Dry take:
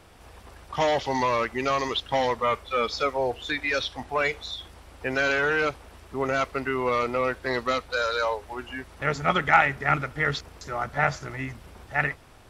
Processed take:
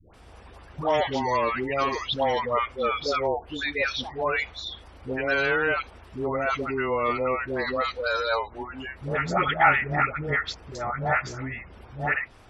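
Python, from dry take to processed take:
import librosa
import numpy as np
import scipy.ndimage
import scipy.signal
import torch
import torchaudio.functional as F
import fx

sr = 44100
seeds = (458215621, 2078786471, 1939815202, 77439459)

y = fx.spec_gate(x, sr, threshold_db=-30, keep='strong')
y = fx.dispersion(y, sr, late='highs', ms=141.0, hz=690.0)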